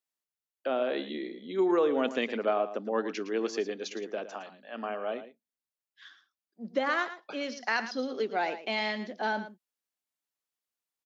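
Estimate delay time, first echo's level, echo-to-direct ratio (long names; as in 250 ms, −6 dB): 112 ms, −12.5 dB, −12.5 dB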